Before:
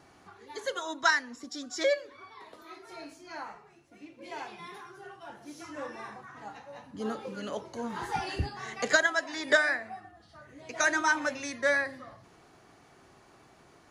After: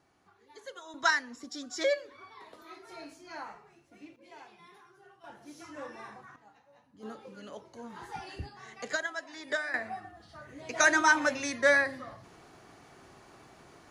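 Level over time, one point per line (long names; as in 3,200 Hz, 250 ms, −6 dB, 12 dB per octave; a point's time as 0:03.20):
−11.5 dB
from 0:00.94 −1.5 dB
from 0:04.16 −11 dB
from 0:05.24 −3.5 dB
from 0:06.36 −15.5 dB
from 0:07.03 −9 dB
from 0:09.74 +3 dB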